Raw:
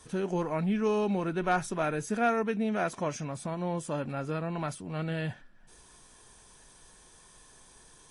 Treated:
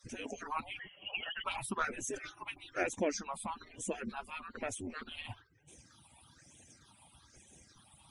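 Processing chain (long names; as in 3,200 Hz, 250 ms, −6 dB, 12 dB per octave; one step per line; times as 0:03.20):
harmonic-percussive split with one part muted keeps percussive
all-pass phaser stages 6, 1.1 Hz, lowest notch 410–1,300 Hz
0:00.79–0:01.44: voice inversion scrambler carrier 3,200 Hz
level +4.5 dB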